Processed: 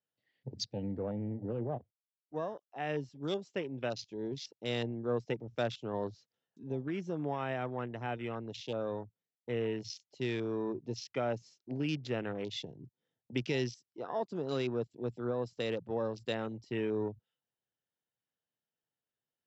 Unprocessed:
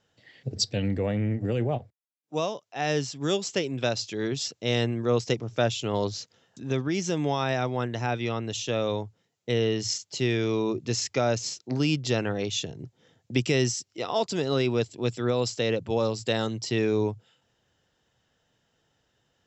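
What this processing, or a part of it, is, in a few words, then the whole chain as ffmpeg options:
over-cleaned archive recording: -af "highpass=120,lowpass=5400,afwtdn=0.0158,volume=-8.5dB"

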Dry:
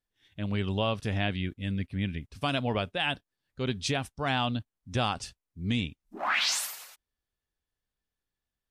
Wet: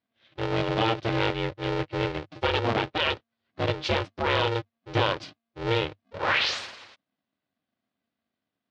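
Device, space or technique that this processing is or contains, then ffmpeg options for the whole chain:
ring modulator pedal into a guitar cabinet: -af "aeval=exprs='val(0)*sgn(sin(2*PI*230*n/s))':channel_layout=same,highpass=78,equalizer=frequency=99:width_type=q:width=4:gain=6,equalizer=frequency=170:width_type=q:width=4:gain=-4,equalizer=frequency=560:width_type=q:width=4:gain=4,lowpass=frequency=4400:width=0.5412,lowpass=frequency=4400:width=1.3066,volume=3.5dB"

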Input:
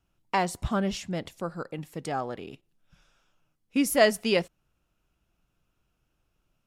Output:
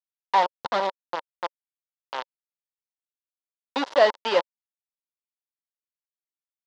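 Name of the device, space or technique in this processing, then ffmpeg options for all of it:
hand-held game console: -af "acrusher=bits=3:mix=0:aa=0.000001,highpass=440,equalizer=frequency=550:width_type=q:width=4:gain=7,equalizer=frequency=930:width_type=q:width=4:gain=10,equalizer=frequency=2400:width_type=q:width=4:gain=-7,lowpass=frequency=4400:width=0.5412,lowpass=frequency=4400:width=1.3066"

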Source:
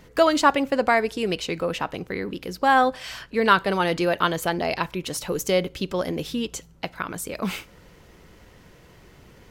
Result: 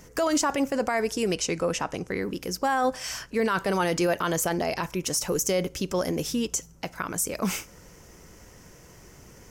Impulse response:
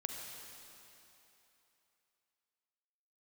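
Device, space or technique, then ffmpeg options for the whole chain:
over-bright horn tweeter: -filter_complex "[0:a]asettb=1/sr,asplit=3[link_01][link_02][link_03];[link_01]atrim=end=1.344[link_04];[link_02]atrim=start=1.34:end=2.17,asetpts=PTS-STARTPTS,afade=type=in:duration=0.004:curve=qsin,afade=type=out:start_time=0.826:duration=0.004:curve=qsin,lowpass=frequency=11000:width=0.5412,lowpass=frequency=11000:width=1.3066[link_05];[link_03]atrim=start=2.166[link_06];[link_04][link_05]acrossfade=duration=0.004:curve1=hsin:curve2=qsin[link_07];[link_07][link_06]acrossfade=duration=0.004:curve1=qsin:curve2=hsin,highshelf=frequency=4800:width_type=q:width=3:gain=6,alimiter=limit=-16dB:level=0:latency=1:release=22"

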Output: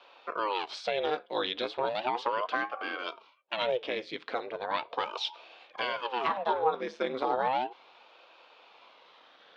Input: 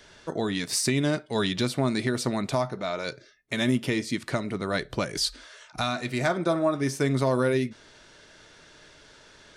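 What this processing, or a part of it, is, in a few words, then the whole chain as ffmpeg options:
voice changer toy: -af "aeval=exprs='val(0)*sin(2*PI*520*n/s+520*0.85/0.36*sin(2*PI*0.36*n/s))':channel_layout=same,highpass=490,equalizer=frequency=500:width_type=q:width=4:gain=4,equalizer=frequency=950:width_type=q:width=4:gain=3,equalizer=frequency=1900:width_type=q:width=4:gain=-6,equalizer=frequency=3500:width_type=q:width=4:gain=4,lowpass=frequency=3600:width=0.5412,lowpass=frequency=3600:width=1.3066"

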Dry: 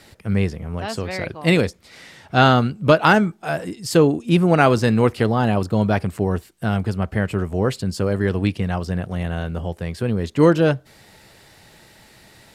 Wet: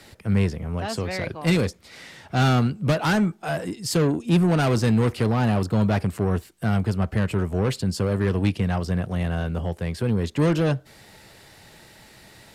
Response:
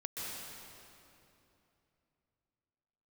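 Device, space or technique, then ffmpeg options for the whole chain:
one-band saturation: -filter_complex "[0:a]acrossover=split=200|4800[link_01][link_02][link_03];[link_02]asoftclip=type=tanh:threshold=-21dB[link_04];[link_01][link_04][link_03]amix=inputs=3:normalize=0"

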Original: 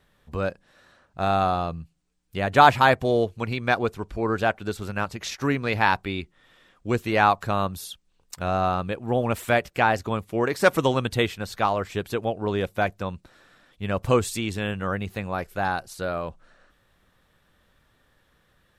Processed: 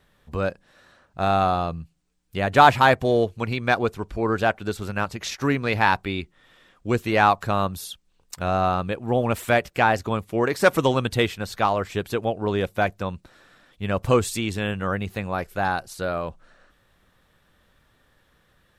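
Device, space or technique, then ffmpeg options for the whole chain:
parallel distortion: -filter_complex "[0:a]asplit=2[link_01][link_02];[link_02]asoftclip=type=hard:threshold=-15dB,volume=-13dB[link_03];[link_01][link_03]amix=inputs=2:normalize=0"

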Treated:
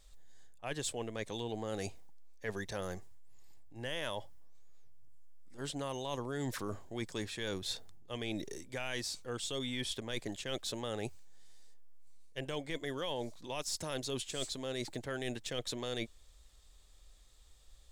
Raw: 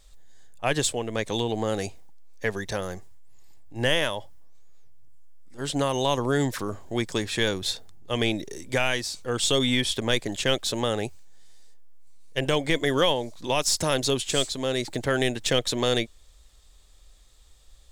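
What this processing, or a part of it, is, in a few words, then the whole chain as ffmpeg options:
compression on the reversed sound: -af "areverse,acompressor=threshold=-29dB:ratio=6,areverse,volume=-6dB"

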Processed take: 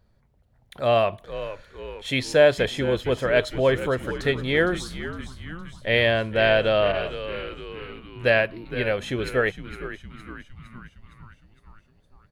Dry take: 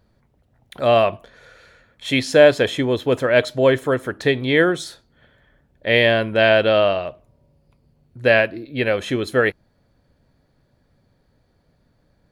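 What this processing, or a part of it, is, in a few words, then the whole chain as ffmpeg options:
low shelf boost with a cut just above: -filter_complex "[0:a]asplit=7[link_01][link_02][link_03][link_04][link_05][link_06][link_07];[link_02]adelay=461,afreqshift=-86,volume=-12.5dB[link_08];[link_03]adelay=922,afreqshift=-172,volume=-17.2dB[link_09];[link_04]adelay=1383,afreqshift=-258,volume=-22dB[link_10];[link_05]adelay=1844,afreqshift=-344,volume=-26.7dB[link_11];[link_06]adelay=2305,afreqshift=-430,volume=-31.4dB[link_12];[link_07]adelay=2766,afreqshift=-516,volume=-36.2dB[link_13];[link_01][link_08][link_09][link_10][link_11][link_12][link_13]amix=inputs=7:normalize=0,lowshelf=frequency=72:gain=7.5,equalizer=frequency=290:width_type=o:width=0.64:gain=-4.5,asettb=1/sr,asplit=3[link_14][link_15][link_16];[link_14]atrim=end=6.924[link_17];[link_15]atrim=start=6.92:end=8.3,asetpts=PTS-STARTPTS,afade=type=in:duration=0.004:curve=qsin,afade=type=out:start_time=1.376:duration=0.004:curve=qsin,adynamicequalizer=threshold=0.0126:dfrequency=2000:dqfactor=0.7:tfrequency=2000:tqfactor=0.7:attack=5:release=100:ratio=0.375:range=2:mode=boostabove:tftype=highshelf[link_18];[link_16]atrim=start=8.296[link_19];[link_17][link_18]acrossfade=duration=0.004:curve1=hsin:curve2=qsin[link_20];[link_20][link_19]acrossfade=duration=0.004:curve1=qsin:curve2=hsin,volume=-4.5dB"

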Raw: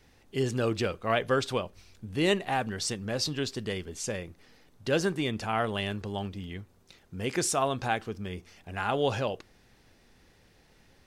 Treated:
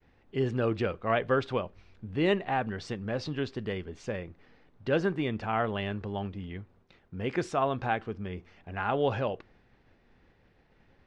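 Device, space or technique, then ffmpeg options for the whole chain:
hearing-loss simulation: -af "lowpass=2400,agate=range=-33dB:threshold=-58dB:ratio=3:detection=peak"

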